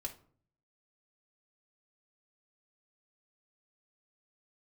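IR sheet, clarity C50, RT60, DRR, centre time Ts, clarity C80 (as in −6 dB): 13.0 dB, 0.50 s, 1.5 dB, 10 ms, 18.5 dB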